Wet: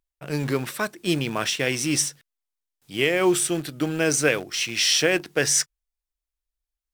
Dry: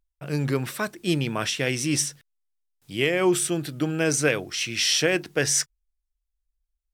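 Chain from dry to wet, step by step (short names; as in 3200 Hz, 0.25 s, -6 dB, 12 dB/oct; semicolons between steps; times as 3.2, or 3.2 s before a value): low shelf 120 Hz -9.5 dB; in parallel at -12 dB: bit-crush 5-bit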